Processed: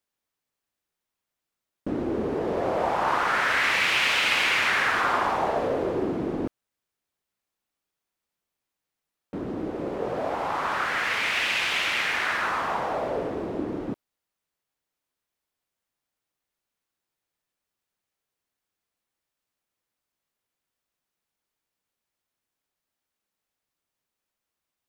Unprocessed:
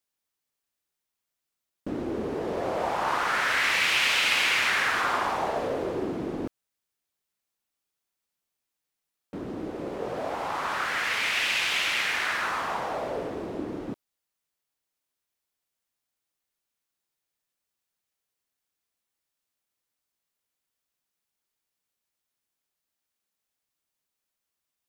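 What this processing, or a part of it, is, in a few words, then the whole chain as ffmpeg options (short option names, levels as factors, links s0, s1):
behind a face mask: -af "highshelf=f=3000:g=-7,volume=1.5"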